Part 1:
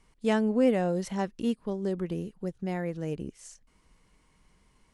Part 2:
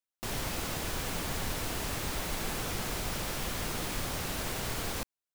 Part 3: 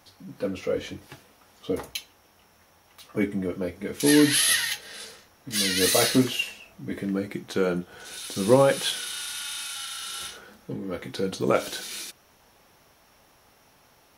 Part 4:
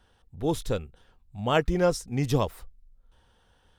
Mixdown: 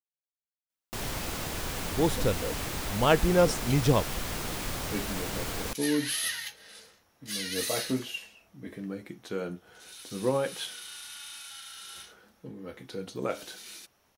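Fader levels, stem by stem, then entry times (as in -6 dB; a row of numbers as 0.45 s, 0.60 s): mute, +0.5 dB, -9.5 dB, +1.0 dB; mute, 0.70 s, 1.75 s, 1.55 s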